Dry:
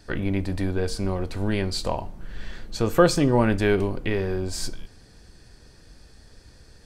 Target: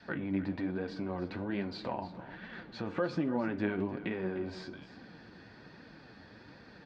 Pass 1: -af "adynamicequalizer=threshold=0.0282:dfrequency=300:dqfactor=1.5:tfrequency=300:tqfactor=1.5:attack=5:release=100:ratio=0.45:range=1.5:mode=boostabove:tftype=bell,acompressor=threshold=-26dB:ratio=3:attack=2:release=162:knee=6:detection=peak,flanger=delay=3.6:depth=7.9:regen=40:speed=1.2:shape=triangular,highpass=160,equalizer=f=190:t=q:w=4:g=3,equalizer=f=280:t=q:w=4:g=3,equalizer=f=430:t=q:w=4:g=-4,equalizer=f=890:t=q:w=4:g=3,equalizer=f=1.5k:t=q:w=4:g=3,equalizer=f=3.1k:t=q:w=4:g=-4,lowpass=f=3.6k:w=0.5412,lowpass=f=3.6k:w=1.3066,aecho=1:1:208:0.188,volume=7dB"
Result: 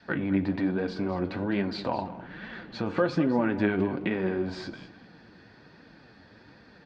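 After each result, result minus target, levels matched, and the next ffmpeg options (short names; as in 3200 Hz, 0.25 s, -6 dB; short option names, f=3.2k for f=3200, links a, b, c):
compressor: peak gain reduction -7.5 dB; echo 93 ms early
-af "adynamicequalizer=threshold=0.0282:dfrequency=300:dqfactor=1.5:tfrequency=300:tqfactor=1.5:attack=5:release=100:ratio=0.45:range=1.5:mode=boostabove:tftype=bell,acompressor=threshold=-37dB:ratio=3:attack=2:release=162:knee=6:detection=peak,flanger=delay=3.6:depth=7.9:regen=40:speed=1.2:shape=triangular,highpass=160,equalizer=f=190:t=q:w=4:g=3,equalizer=f=280:t=q:w=4:g=3,equalizer=f=430:t=q:w=4:g=-4,equalizer=f=890:t=q:w=4:g=3,equalizer=f=1.5k:t=q:w=4:g=3,equalizer=f=3.1k:t=q:w=4:g=-4,lowpass=f=3.6k:w=0.5412,lowpass=f=3.6k:w=1.3066,aecho=1:1:208:0.188,volume=7dB"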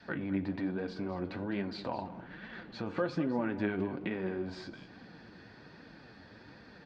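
echo 93 ms early
-af "adynamicequalizer=threshold=0.0282:dfrequency=300:dqfactor=1.5:tfrequency=300:tqfactor=1.5:attack=5:release=100:ratio=0.45:range=1.5:mode=boostabove:tftype=bell,acompressor=threshold=-37dB:ratio=3:attack=2:release=162:knee=6:detection=peak,flanger=delay=3.6:depth=7.9:regen=40:speed=1.2:shape=triangular,highpass=160,equalizer=f=190:t=q:w=4:g=3,equalizer=f=280:t=q:w=4:g=3,equalizer=f=430:t=q:w=4:g=-4,equalizer=f=890:t=q:w=4:g=3,equalizer=f=1.5k:t=q:w=4:g=3,equalizer=f=3.1k:t=q:w=4:g=-4,lowpass=f=3.6k:w=0.5412,lowpass=f=3.6k:w=1.3066,aecho=1:1:301:0.188,volume=7dB"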